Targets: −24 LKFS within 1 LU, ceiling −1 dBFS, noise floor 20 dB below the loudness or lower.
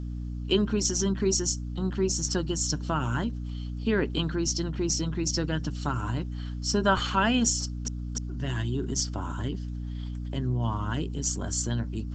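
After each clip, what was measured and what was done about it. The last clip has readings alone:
mains hum 60 Hz; hum harmonics up to 300 Hz; level of the hum −31 dBFS; integrated loudness −28.5 LKFS; sample peak −9.5 dBFS; target loudness −24.0 LKFS
→ hum removal 60 Hz, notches 5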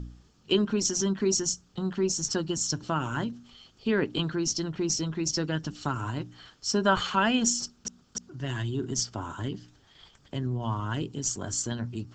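mains hum none found; integrated loudness −29.0 LKFS; sample peak −10.0 dBFS; target loudness −24.0 LKFS
→ level +5 dB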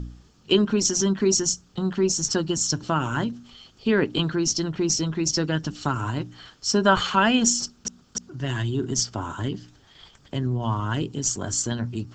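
integrated loudness −24.0 LKFS; sample peak −5.0 dBFS; background noise floor −57 dBFS

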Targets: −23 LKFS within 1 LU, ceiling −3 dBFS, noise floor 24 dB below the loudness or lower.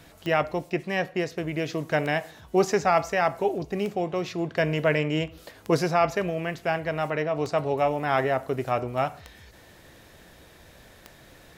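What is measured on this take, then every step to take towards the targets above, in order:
number of clicks 7; integrated loudness −26.5 LKFS; sample peak −10.0 dBFS; target loudness −23.0 LKFS
→ click removal
level +3.5 dB

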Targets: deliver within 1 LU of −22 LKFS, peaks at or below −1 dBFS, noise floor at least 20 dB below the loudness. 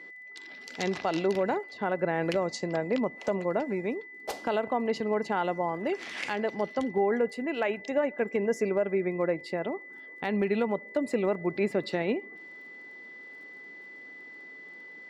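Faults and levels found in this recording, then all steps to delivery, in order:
crackle rate 22 per second; interfering tone 2,000 Hz; level of the tone −44 dBFS; integrated loudness −30.0 LKFS; sample peak −16.5 dBFS; target loudness −22.0 LKFS
→ click removal
notch filter 2,000 Hz, Q 30
level +8 dB

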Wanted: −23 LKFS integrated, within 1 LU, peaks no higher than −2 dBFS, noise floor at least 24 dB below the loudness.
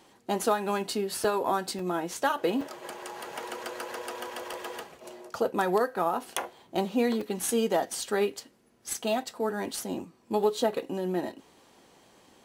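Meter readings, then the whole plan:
number of dropouts 5; longest dropout 3.4 ms; integrated loudness −30.5 LKFS; sample peak −11.0 dBFS; target loudness −23.0 LKFS
→ repair the gap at 0:01.24/0:01.79/0:02.61/0:04.53/0:07.21, 3.4 ms
level +7.5 dB

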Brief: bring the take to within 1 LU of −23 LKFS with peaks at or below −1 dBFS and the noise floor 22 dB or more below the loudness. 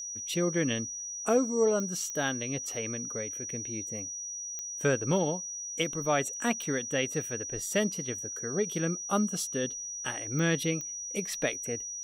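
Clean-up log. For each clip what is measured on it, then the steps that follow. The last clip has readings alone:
number of clicks 6; interfering tone 5,800 Hz; level of the tone −36 dBFS; integrated loudness −31.0 LKFS; sample peak −15.0 dBFS; target loudness −23.0 LKFS
→ click removal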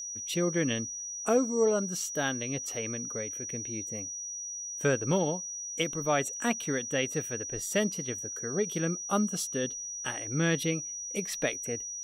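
number of clicks 0; interfering tone 5,800 Hz; level of the tone −36 dBFS
→ notch filter 5,800 Hz, Q 30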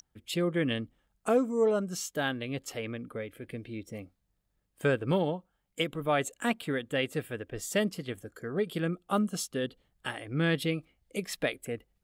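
interfering tone none found; integrated loudness −32.0 LKFS; sample peak −15.5 dBFS; target loudness −23.0 LKFS
→ level +9 dB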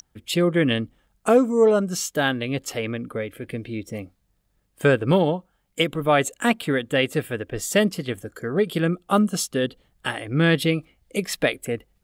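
integrated loudness −23.0 LKFS; sample peak −6.5 dBFS; background noise floor −69 dBFS

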